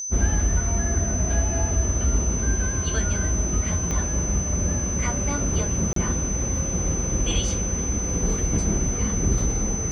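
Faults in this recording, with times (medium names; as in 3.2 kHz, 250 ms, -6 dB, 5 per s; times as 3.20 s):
whine 6.1 kHz -28 dBFS
3.91 s: pop -14 dBFS
5.93–5.96 s: dropout 33 ms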